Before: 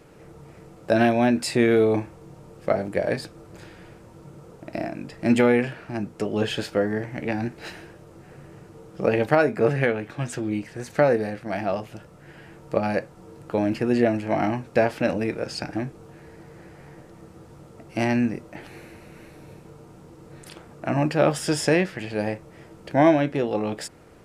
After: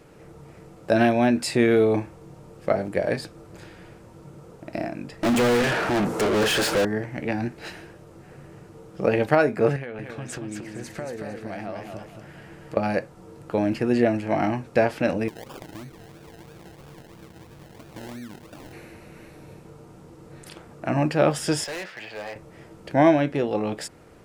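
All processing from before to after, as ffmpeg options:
-filter_complex "[0:a]asettb=1/sr,asplit=3[a][b][c];[a]atrim=end=5.234[d];[b]atrim=start=5.23:end=6.85,asetpts=PTS-STARTPTS,afade=t=in:d=0.004:c=qsin,afade=t=out:st=1.616:d=0.004:c=qsin,equalizer=f=3.2k:w=0.59:g=-8.5,asoftclip=type=hard:threshold=-18dB,asplit=2[e][f];[f]highpass=f=720:p=1,volume=35dB,asoftclip=type=tanh:threshold=-15.5dB[g];[e][g]amix=inputs=2:normalize=0,lowpass=f=7.4k:p=1,volume=-6dB[h];[c]atrim=start=6.846[i];[d][h]acrossfade=d=0.004:c1=hsin:c2=qsin[j];[j][i]acrossfade=d=0.004:c1=qsin:c2=hsin,asettb=1/sr,asplit=3[k][l][m];[k]atrim=end=9.764[n];[l]atrim=start=9.76:end=12.77,asetpts=PTS-STARTPTS,afade=t=in:d=0.004:c=qsin,afade=t=out:st=3.006:d=0.004:c=qsin,acompressor=threshold=-30dB:ratio=8:attack=3.2:release=140:knee=1:detection=peak,aecho=1:1:228|456|684|912:0.562|0.174|0.054|0.0168,atrim=end_sample=132741[o];[m]atrim=start=12.766[p];[n][o]acrossfade=d=0.004:c1=hsin:c2=qsin[q];[q][p]acrossfade=d=0.004:c1=qsin:c2=hsin,asettb=1/sr,asplit=3[r][s][t];[r]atrim=end=15.284[u];[s]atrim=start=15.28:end=18.73,asetpts=PTS-STARTPTS,afade=t=in:d=0.004:c=qsin,afade=t=out:st=3.446:d=0.004:c=qsin,acompressor=threshold=-36dB:ratio=6:attack=3.2:release=140:knee=1:detection=peak,acrusher=samples=30:mix=1:aa=0.000001:lfo=1:lforange=18:lforate=3[v];[t]atrim=start=18.726[w];[u][v]acrossfade=d=0.004:c1=hsin:c2=qsin[x];[x][w]acrossfade=d=0.004:c1=qsin:c2=hsin,asettb=1/sr,asplit=3[y][z][aa];[y]atrim=end=21.644[ab];[z]atrim=start=21.64:end=22.36,asetpts=PTS-STARTPTS,afade=t=in:d=0.004:c=qsin,afade=t=out:st=0.716:d=0.004:c=qsin,acrossover=split=540 6000:gain=0.141 1 0.251[ac][ad][ae];[ac][ad][ae]amix=inputs=3:normalize=0,acrusher=bits=8:mode=log:mix=0:aa=0.000001,asoftclip=type=hard:threshold=-30.5dB[af];[aa]atrim=start=22.356[ag];[ab][af]acrossfade=d=0.004:c1=hsin:c2=qsin[ah];[ah][ag]acrossfade=d=0.004:c1=qsin:c2=hsin"

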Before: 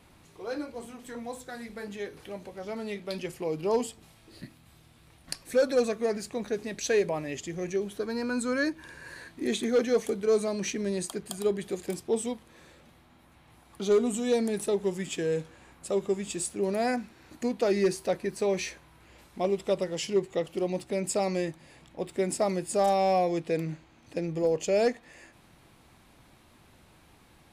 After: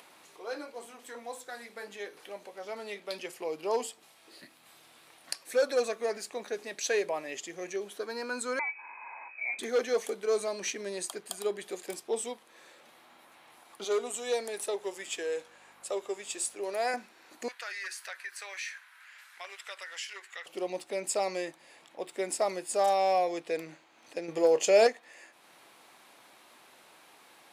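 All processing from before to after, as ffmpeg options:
-filter_complex "[0:a]asettb=1/sr,asplit=3[a][b][c];[a]atrim=end=8.594[d];[b]atrim=start=8.59:end=9.59,asetpts=PTS-STARTPTS,afade=t=in:d=0.004:c=qsin,afade=t=out:st=0.996:d=0.004:c=qsin,acompressor=threshold=-34dB:ratio=2:attack=3.2:release=140:knee=1:detection=peak,aeval=exprs='val(0)+0.00282*(sin(2*PI*50*n/s)+sin(2*PI*2*50*n/s)/2+sin(2*PI*3*50*n/s)/3+sin(2*PI*4*50*n/s)/4+sin(2*PI*5*50*n/s)/5)':c=same,lowpass=f=2.2k:t=q:w=0.5098,lowpass=f=2.2k:t=q:w=0.6013,lowpass=f=2.2k:t=q:w=0.9,lowpass=f=2.2k:t=q:w=2.563,afreqshift=-2600[e];[c]atrim=start=9.586[f];[d][e]acrossfade=d=0.004:c1=hsin:c2=qsin[g];[g][f]acrossfade=d=0.004:c1=qsin:c2=hsin,asettb=1/sr,asplit=3[h][i][j];[h]atrim=end=13.844[k];[i]atrim=start=13.84:end=16.94,asetpts=PTS-STARTPTS,afade=t=in:d=0.004:c=qsin,afade=t=out:st=3.096:d=0.004:c=qsin,highpass=350,aeval=exprs='val(0)+0.00355*(sin(2*PI*50*n/s)+sin(2*PI*2*50*n/s)/2+sin(2*PI*3*50*n/s)/3+sin(2*PI*4*50*n/s)/4+sin(2*PI*5*50*n/s)/5)':c=same[l];[j]atrim=start=16.936[m];[k][l]acrossfade=d=0.004:c1=hsin:c2=qsin[n];[n][m]acrossfade=d=0.004:c1=qsin:c2=hsin,asettb=1/sr,asplit=3[o][p][q];[o]atrim=end=17.484[r];[p]atrim=start=17.48:end=20.46,asetpts=PTS-STARTPTS,afade=t=in:d=0.004:c=qsin,afade=t=out:st=2.976:d=0.004:c=qsin,highpass=f=1.6k:t=q:w=3.3,acompressor=threshold=-39dB:ratio=2:attack=3.2:release=140:knee=1:detection=peak[s];[q]atrim=start=20.456[t];[r][s]acrossfade=d=0.004:c1=hsin:c2=qsin[u];[u][t]acrossfade=d=0.004:c1=qsin:c2=hsin,asettb=1/sr,asplit=3[v][w][x];[v]atrim=end=24.284[y];[w]atrim=start=24.28:end=24.87,asetpts=PTS-STARTPTS,afade=t=in:d=0.004:c=qsin,afade=t=out:st=0.586:d=0.004:c=qsin,acontrast=54,asplit=2[z][aa];[aa]adelay=27,volume=-14dB[ab];[z][ab]amix=inputs=2:normalize=0,atrim=end_sample=26019[ac];[x]atrim=start=24.866[ad];[y][ac]acrossfade=d=0.004:c1=hsin:c2=qsin[ae];[ae][ad]acrossfade=d=0.004:c1=qsin:c2=hsin,highpass=500,acompressor=mode=upward:threshold=-50dB:ratio=2.5"

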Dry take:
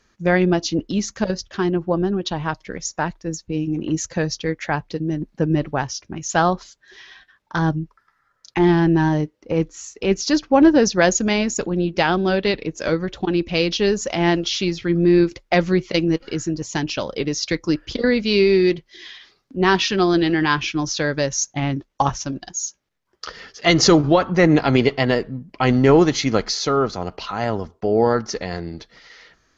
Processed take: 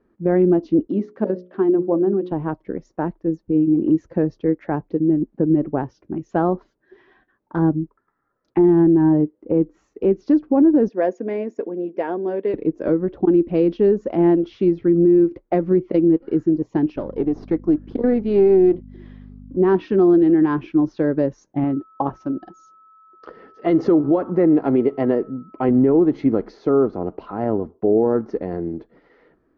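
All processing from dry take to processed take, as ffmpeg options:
-filter_complex "[0:a]asettb=1/sr,asplit=3[a][b][c];[a]atrim=end=0.874[d];[b]atrim=start=0.87:end=2.32,asetpts=PTS-STARTPTS,afade=t=in:d=0.004:c=qsin,afade=t=out:st=1.446:d=0.004:c=qsin,highpass=210,lowpass=4.8k,bandreject=f=60:t=h:w=6,bandreject=f=120:t=h:w=6,bandreject=f=180:t=h:w=6,bandreject=f=240:t=h:w=6,bandreject=f=300:t=h:w=6,bandreject=f=360:t=h:w=6,bandreject=f=420:t=h:w=6,bandreject=f=480:t=h:w=6,bandreject=f=540:t=h:w=6,bandreject=f=600:t=h:w=6[e];[c]atrim=start=2.316[f];[d][e]acrossfade=d=0.004:c1=hsin:c2=qsin[g];[g][f]acrossfade=d=0.004:c1=qsin:c2=hsin,asettb=1/sr,asplit=3[h][i][j];[h]atrim=end=10.894[k];[i]atrim=start=10.89:end=12.54,asetpts=PTS-STARTPTS,afade=t=in:d=0.004:c=qsin,afade=t=out:st=1.646:d=0.004:c=qsin,highpass=490,equalizer=f=800:t=q:w=4:g=-7,equalizer=f=1.3k:t=q:w=4:g=-10,equalizer=f=2.9k:t=q:w=4:g=-4,equalizer=f=4.1k:t=q:w=4:g=-10,lowpass=f=6.5k:w=0.5412,lowpass=f=6.5k:w=1.3066,aecho=1:1:4.3:0.34,atrim=end_sample=72765[l];[j]atrim=start=12.536[m];[k][l]acrossfade=d=0.004:c1=hsin:c2=qsin[n];[n][m]acrossfade=d=0.004:c1=qsin:c2=hsin,asettb=1/sr,asplit=3[o][p][q];[o]atrim=end=16.964[r];[p]atrim=start=16.96:end=19.57,asetpts=PTS-STARTPTS,afade=t=in:d=0.004:c=qsin,afade=t=out:st=2.606:d=0.004:c=qsin,aeval=exprs='if(lt(val(0),0),0.447*val(0),val(0))':c=same,aeval=exprs='val(0)+0.0158*(sin(2*PI*50*n/s)+sin(2*PI*2*50*n/s)/2+sin(2*PI*3*50*n/s)/3+sin(2*PI*4*50*n/s)/4+sin(2*PI*5*50*n/s)/5)':c=same[s];[q]atrim=start=19.566[t];[r][s]acrossfade=d=0.004:c1=hsin:c2=qsin[u];[u][t]acrossfade=d=0.004:c1=qsin:c2=hsin,asettb=1/sr,asplit=3[v][w][x];[v]atrim=end=21.644[y];[w]atrim=start=21.64:end=25.69,asetpts=PTS-STARTPTS,afade=t=in:d=0.004:c=qsin,afade=t=out:st=4.046:d=0.004:c=qsin,lowshelf=f=160:g=-8.5,aeval=exprs='val(0)+0.01*sin(2*PI*1300*n/s)':c=same[z];[x]atrim=start=25.686[aa];[y][z]acrossfade=d=0.004:c1=hsin:c2=qsin[ab];[ab][aa]acrossfade=d=0.004:c1=qsin:c2=hsin,lowpass=1.2k,equalizer=f=320:w=0.88:g=14,alimiter=limit=-2dB:level=0:latency=1:release=143,volume=-6dB"

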